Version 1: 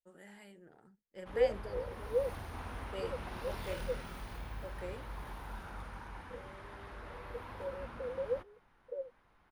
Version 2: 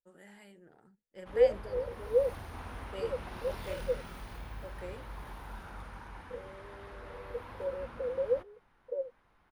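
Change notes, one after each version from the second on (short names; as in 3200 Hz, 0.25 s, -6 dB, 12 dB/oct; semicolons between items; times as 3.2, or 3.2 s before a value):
second voice +5.5 dB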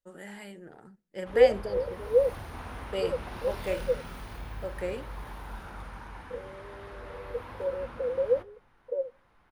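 first voice +10.0 dB; second voice +4.0 dB; reverb: on, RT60 0.50 s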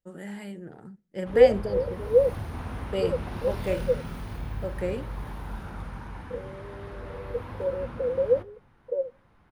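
master: add bell 130 Hz +10 dB 2.8 oct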